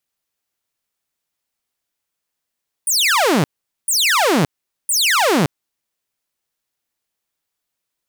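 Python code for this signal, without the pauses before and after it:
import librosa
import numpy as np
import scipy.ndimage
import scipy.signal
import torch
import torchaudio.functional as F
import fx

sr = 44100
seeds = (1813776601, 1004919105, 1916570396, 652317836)

y = fx.laser_zaps(sr, level_db=-10.0, start_hz=9900.0, end_hz=130.0, length_s=0.57, wave='saw', shots=3, gap_s=0.44)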